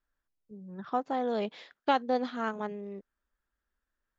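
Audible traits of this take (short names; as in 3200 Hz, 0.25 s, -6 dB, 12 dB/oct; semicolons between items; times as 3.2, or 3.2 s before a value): noise floor -87 dBFS; spectral tilt -3.0 dB/oct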